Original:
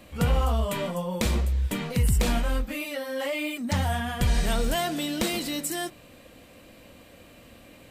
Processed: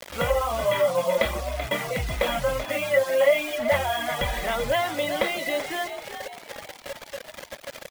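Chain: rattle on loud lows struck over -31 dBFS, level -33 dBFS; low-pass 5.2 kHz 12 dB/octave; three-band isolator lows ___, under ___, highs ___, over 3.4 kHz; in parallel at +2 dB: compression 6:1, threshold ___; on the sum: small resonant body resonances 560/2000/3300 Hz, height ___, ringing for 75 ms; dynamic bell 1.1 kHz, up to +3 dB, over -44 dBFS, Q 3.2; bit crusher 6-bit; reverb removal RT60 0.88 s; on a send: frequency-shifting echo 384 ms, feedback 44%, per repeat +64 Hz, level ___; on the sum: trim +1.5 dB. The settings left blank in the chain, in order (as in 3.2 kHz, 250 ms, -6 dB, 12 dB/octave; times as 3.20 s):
-12 dB, 490 Hz, -22 dB, -41 dBFS, 17 dB, -10 dB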